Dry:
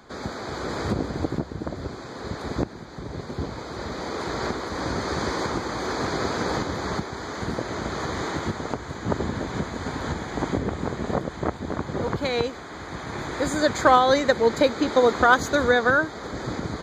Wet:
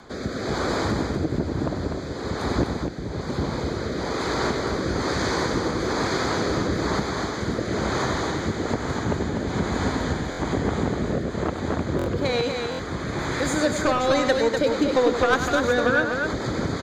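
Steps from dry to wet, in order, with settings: in parallel at +2.5 dB: compression, threshold -30 dBFS, peak gain reduction 18 dB; on the sum: saturation -11 dBFS, distortion -15 dB; rotary cabinet horn 1.1 Hz, later 6.3 Hz, at 14.31 s; loudspeakers at several distances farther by 34 m -9 dB, 85 m -5 dB; buffer glitch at 10.30/11.97/12.70 s, samples 1024, times 3

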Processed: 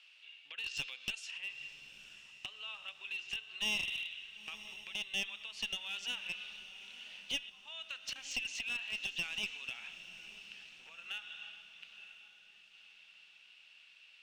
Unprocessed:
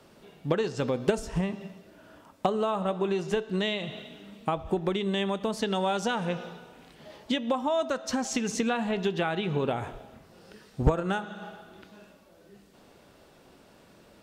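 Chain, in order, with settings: 0.66–1.31 s: treble shelf 2.7 kHz +10 dB; 7.39–8.16 s: slow attack 469 ms; compression 5:1, threshold -30 dBFS, peak gain reduction 13 dB; ladder band-pass 2.9 kHz, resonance 75%; one-sided clip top -44.5 dBFS; echo that smears into a reverb 959 ms, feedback 44%, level -13.5 dB; trim +9 dB

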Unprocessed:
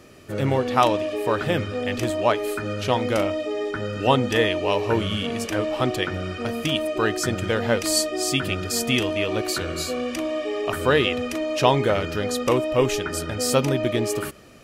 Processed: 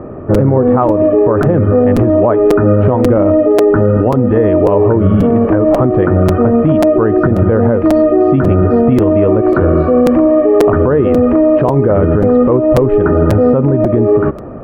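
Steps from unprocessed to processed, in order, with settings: low-pass 1.1 kHz 24 dB/octave; dynamic bell 840 Hz, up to -7 dB, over -36 dBFS, Q 1.3; compression, threshold -25 dBFS, peak gain reduction 9 dB; loudness maximiser +23.5 dB; crackling interface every 0.54 s, samples 256, repeat, from 0.34 s; trim -1 dB

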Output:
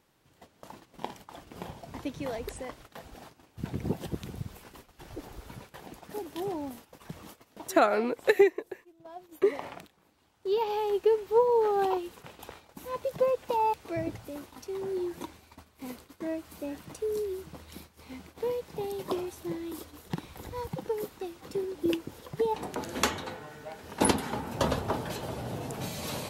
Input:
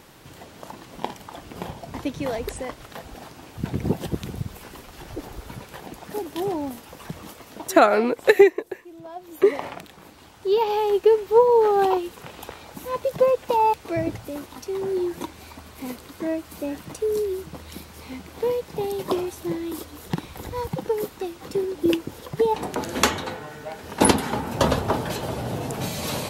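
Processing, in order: gate -41 dBFS, range -12 dB; trim -7.5 dB

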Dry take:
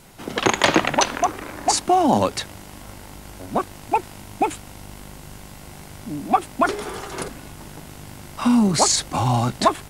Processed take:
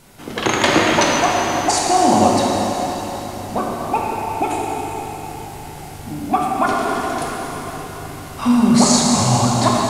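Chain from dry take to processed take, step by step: plate-style reverb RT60 4.6 s, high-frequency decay 0.85×, pre-delay 0 ms, DRR -4 dB; trim -1 dB

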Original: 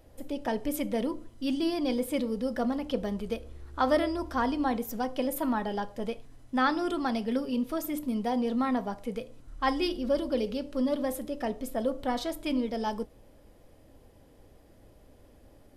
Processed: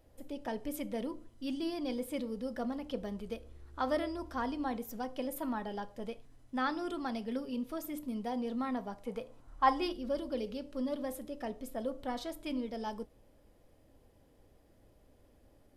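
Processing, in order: 9.06–9.93 s: peaking EQ 920 Hz +11 dB 1.3 oct; trim -7.5 dB

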